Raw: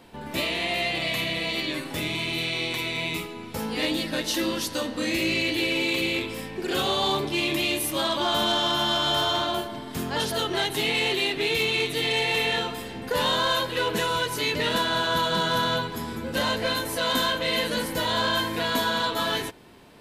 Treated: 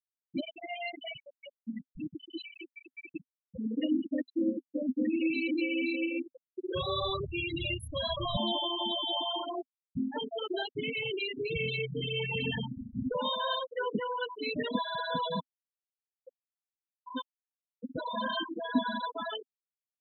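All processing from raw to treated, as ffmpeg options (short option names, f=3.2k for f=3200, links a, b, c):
-filter_complex "[0:a]asettb=1/sr,asplit=3[a][b][c];[a]atrim=end=1.184[d];[b]atrim=start=1.18:end=1.97,asetpts=PTS-STARTPTS,afade=t=in:d=0.004:c=qsin,afade=t=out:st=0.786:d=0.004:c=qsin,bandreject=f=50:t=h:w=6,bandreject=f=100:t=h:w=6,bandreject=f=150:t=h:w=6,bandreject=f=200:t=h:w=6,bandreject=f=250:t=h:w=6,bandreject=f=300:t=h:w=6,bandreject=f=350:t=h:w=6,bandreject=f=400:t=h:w=6,aeval=exprs='(mod(11.2*val(0)+1,2)-1)/11.2':c=same,afreqshift=-85[e];[c]atrim=start=1.966[f];[d][e]acrossfade=d=0.004:c1=hsin:c2=qsin[g];[g][f]acrossfade=d=0.004:c1=qsin:c2=hsin,asettb=1/sr,asplit=3[h][i][j];[h]atrim=end=6.284[k];[i]atrim=start=6.28:end=8.37,asetpts=PTS-STARTPTS,afade=t=in:d=0.004:c=qsin,afade=t=out:st=2.086:d=0.004:c=qsin,aecho=1:1:1.8:0.63,atrim=end_sample=92169,asubboost=boost=7.5:cutoff=210,bandreject=f=147:t=h:w=4,bandreject=f=294:t=h:w=4,bandreject=f=441:t=h:w=4,bandreject=f=588:t=h:w=4,bandreject=f=735:t=h:w=4,bandreject=f=882:t=h:w=4,bandreject=f=1.029k:t=h:w=4,bandreject=f=1.176k:t=h:w=4,bandreject=f=1.323k:t=h:w=4,bandreject=f=1.47k:t=h:w=4,bandreject=f=1.617k:t=h:w=4,bandreject=f=1.764k:t=h:w=4,bandreject=f=1.911k:t=h:w=4,bandreject=f=2.058k:t=h:w=4,bandreject=f=2.205k:t=h:w=4,bandreject=f=2.352k:t=h:w=4,bandreject=f=2.499k:t=h:w=4,bandreject=f=2.646k:t=h:w=4,bandreject=f=2.793k:t=h:w=4,bandreject=f=2.94k:t=h:w=4,bandreject=f=3.087k:t=h:w=4,bandreject=f=3.234k:t=h:w=4,bandreject=f=3.381k:t=h:w=4,bandreject=f=3.528k:t=h:w=4,bandreject=f=3.675k:t=h:w=4,bandreject=f=3.822k:t=h:w=4,bandreject=f=3.969k:t=h:w=4,bandreject=f=4.116k:t=h:w=4,bandreject=f=4.263k:t=h:w=4,bandreject=f=4.41k:t=h:w=4,bandreject=f=4.557k:t=h:w=4,bandreject=f=4.704k:t=h:w=4[l];[j]atrim=start=8.366[m];[k][l]acrossfade=d=0.004:c1=hsin:c2=qsin[n];[n][m]acrossfade=d=0.004:c1=qsin:c2=hsin,asettb=1/sr,asplit=3[o][p][q];[o]atrim=end=10.364[r];[p]atrim=start=10.36:end=13.15,asetpts=PTS-STARTPTS,afade=t=in:d=0.004:c=qsin,afade=t=out:st=2.786:d=0.004:c=qsin,asubboost=boost=5.5:cutoff=220,aecho=1:1:591:0.133,atrim=end_sample=123039[s];[q]atrim=start=13.146[t];[r][s]acrossfade=d=0.004:c1=hsin:c2=qsin[u];[u][t]acrossfade=d=0.004:c1=qsin:c2=hsin,asettb=1/sr,asplit=3[v][w][x];[v]atrim=end=15.404[y];[w]atrim=start=15.4:end=17.83,asetpts=PTS-STARTPTS,afade=t=in:d=0.004:c=qsin,afade=t=out:st=2.426:d=0.004:c=qsin,highpass=340,lowpass=4.2k,aeval=exprs='val(0)*pow(10,-36*if(lt(mod(-1.1*n/s,1),2*abs(-1.1)/1000),1-mod(-1.1*n/s,1)/(2*abs(-1.1)/1000),(mod(-1.1*n/s,1)-2*abs(-1.1)/1000)/(1-2*abs(-1.1)/1000))/20)':c=same[z];[x]atrim=start=17.826[aa];[y][z]acrossfade=d=0.004:c1=hsin:c2=qsin[ab];[ab][aa]acrossfade=d=0.004:c1=qsin:c2=hsin,afftfilt=real='re*gte(hypot(re,im),0.2)':imag='im*gte(hypot(re,im),0.2)':win_size=1024:overlap=0.75,equalizer=f=260:w=2.6:g=12.5,volume=-6dB"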